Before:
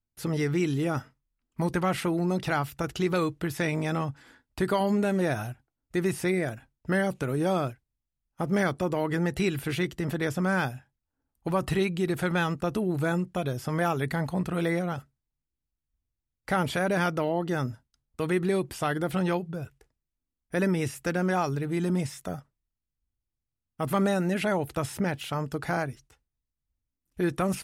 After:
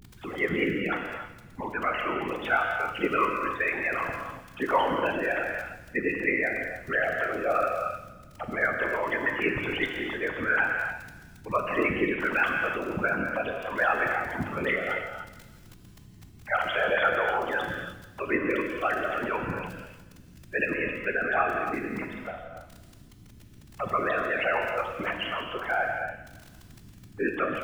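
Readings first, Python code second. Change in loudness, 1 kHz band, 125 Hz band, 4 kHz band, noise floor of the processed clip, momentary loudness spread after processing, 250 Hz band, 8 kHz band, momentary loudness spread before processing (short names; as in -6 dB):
+0.5 dB, +3.5 dB, -12.0 dB, +0.5 dB, -51 dBFS, 13 LU, -6.0 dB, under -10 dB, 9 LU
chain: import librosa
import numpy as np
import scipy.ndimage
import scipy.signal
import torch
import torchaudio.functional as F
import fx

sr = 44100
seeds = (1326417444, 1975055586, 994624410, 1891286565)

p1 = fx.sine_speech(x, sr)
p2 = fx.peak_eq(p1, sr, hz=330.0, db=-13.0, octaves=1.8)
p3 = fx.add_hum(p2, sr, base_hz=60, snr_db=20)
p4 = fx.dmg_crackle(p3, sr, seeds[0], per_s=19.0, level_db=-36.0)
p5 = fx.whisperise(p4, sr, seeds[1])
p6 = p5 + fx.echo_feedback(p5, sr, ms=167, feedback_pct=44, wet_db=-16.0, dry=0)
p7 = fx.rev_gated(p6, sr, seeds[2], gate_ms=330, shape='flat', drr_db=2.0)
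y = p7 * librosa.db_to_amplitude(5.0)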